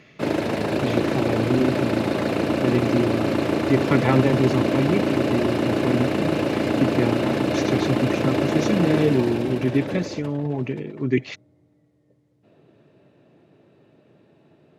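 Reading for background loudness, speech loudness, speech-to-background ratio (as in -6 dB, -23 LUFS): -23.0 LUFS, -25.0 LUFS, -2.0 dB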